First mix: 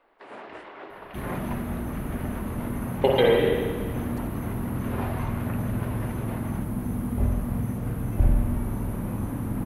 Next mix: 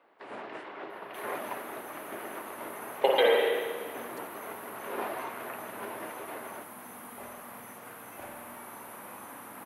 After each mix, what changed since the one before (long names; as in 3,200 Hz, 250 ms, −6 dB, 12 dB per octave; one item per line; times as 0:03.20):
speech: add high-pass filter 500 Hz 24 dB per octave
second sound: add high-pass filter 850 Hz 12 dB per octave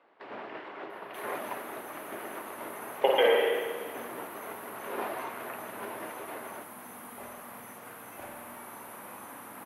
speech: add linear-phase brick-wall low-pass 3,500 Hz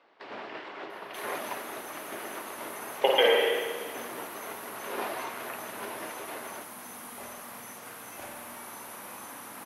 master: add parametric band 5,600 Hz +12 dB 1.6 octaves